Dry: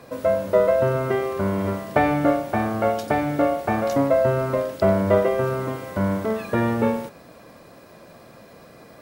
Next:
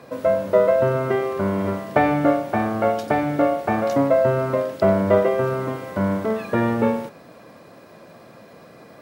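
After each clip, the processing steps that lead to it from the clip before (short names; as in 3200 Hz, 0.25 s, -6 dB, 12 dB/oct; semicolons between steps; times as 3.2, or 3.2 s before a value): HPF 100 Hz; high shelf 5200 Hz -6 dB; gain +1.5 dB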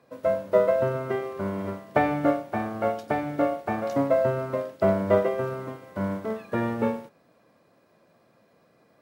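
upward expander 1.5:1, over -39 dBFS; gain -3 dB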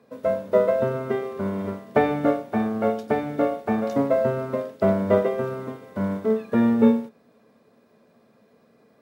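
small resonant body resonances 230/430/3600 Hz, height 12 dB, ringing for 0.1 s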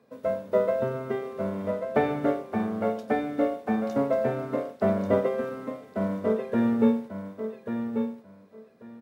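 feedback echo 1.139 s, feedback 18%, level -7 dB; gain -4.5 dB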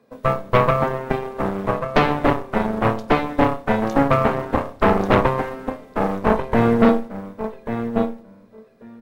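added harmonics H 4 -7 dB, 8 -15 dB, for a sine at -9.5 dBFS; on a send at -21 dB: reverb RT60 0.80 s, pre-delay 17 ms; on the sum: gain +3.5 dB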